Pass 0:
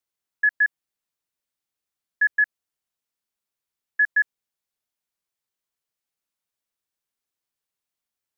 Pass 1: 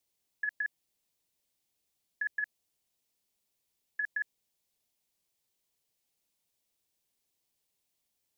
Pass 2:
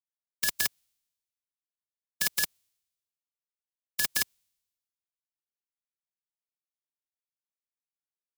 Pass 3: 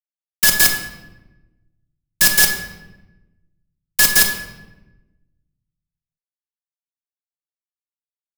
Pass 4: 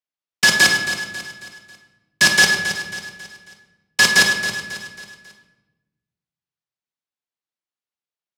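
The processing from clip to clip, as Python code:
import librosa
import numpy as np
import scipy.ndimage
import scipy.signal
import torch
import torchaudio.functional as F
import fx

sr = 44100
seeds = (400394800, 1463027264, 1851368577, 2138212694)

y1 = fx.peak_eq(x, sr, hz=1400.0, db=-10.5, octaves=0.99)
y1 = fx.over_compress(y1, sr, threshold_db=-30.0, ratio=-0.5)
y2 = fx.envelope_flatten(y1, sr, power=0.1)
y2 = fx.band_widen(y2, sr, depth_pct=100)
y3 = fx.fuzz(y2, sr, gain_db=33.0, gate_db=-40.0)
y3 = fx.room_shoebox(y3, sr, seeds[0], volume_m3=480.0, walls='mixed', distance_m=1.0)
y3 = y3 * librosa.db_to_amplitude(4.5)
y4 = fx.bandpass_edges(y3, sr, low_hz=120.0, high_hz=5400.0)
y4 = fx.echo_feedback(y4, sr, ms=272, feedback_pct=43, wet_db=-11.0)
y4 = y4 * librosa.db_to_amplitude(4.0)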